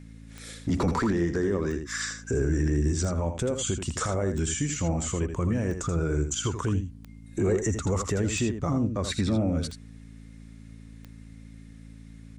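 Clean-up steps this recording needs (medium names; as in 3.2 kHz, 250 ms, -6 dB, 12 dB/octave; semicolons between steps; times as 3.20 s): de-click; de-hum 55.1 Hz, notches 5; inverse comb 81 ms -8 dB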